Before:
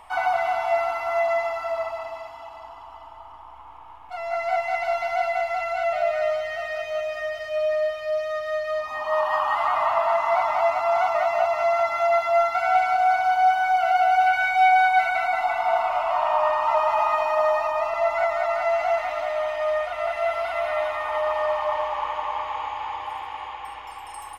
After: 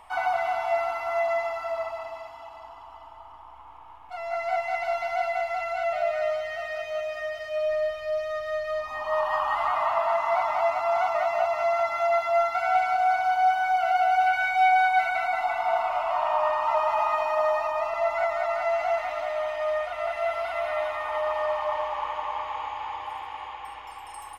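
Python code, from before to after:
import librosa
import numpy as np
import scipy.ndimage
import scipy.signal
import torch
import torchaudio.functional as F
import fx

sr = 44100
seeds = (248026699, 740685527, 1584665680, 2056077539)

y = fx.low_shelf(x, sr, hz=79.0, db=11.0, at=(7.66, 9.72))
y = y * librosa.db_to_amplitude(-3.0)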